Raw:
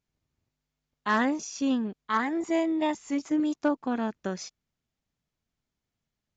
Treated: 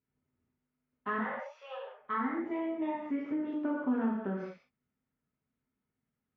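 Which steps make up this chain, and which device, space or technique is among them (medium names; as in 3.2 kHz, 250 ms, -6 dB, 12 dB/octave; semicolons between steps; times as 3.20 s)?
1.18–1.99 s: steep high-pass 520 Hz 72 dB/octave; gated-style reverb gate 230 ms falling, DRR -6 dB; bass amplifier (compression 4:1, threshold -24 dBFS, peak gain reduction 7.5 dB; cabinet simulation 65–2400 Hz, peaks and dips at 240 Hz +9 dB, 510 Hz +4 dB, 720 Hz -4 dB, 1.3 kHz +4 dB); trim -9 dB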